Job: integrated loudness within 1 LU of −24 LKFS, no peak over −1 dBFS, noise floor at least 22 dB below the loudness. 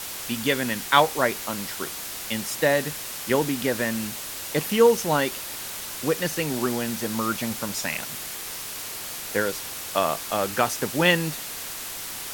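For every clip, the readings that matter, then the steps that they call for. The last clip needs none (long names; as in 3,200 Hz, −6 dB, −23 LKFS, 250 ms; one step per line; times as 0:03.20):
background noise floor −35 dBFS; target noise floor −47 dBFS; integrated loudness −25.0 LKFS; sample peak −2.5 dBFS; target loudness −24.0 LKFS
→ noise reduction from a noise print 12 dB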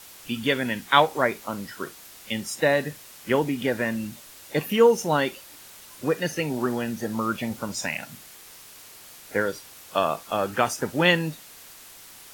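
background noise floor −47 dBFS; integrated loudness −25.0 LKFS; sample peak −3.0 dBFS; target loudness −24.0 LKFS
→ level +1 dB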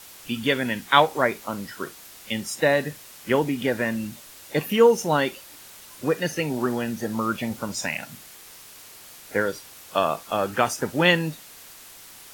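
integrated loudness −24.0 LKFS; sample peak −2.0 dBFS; background noise floor −46 dBFS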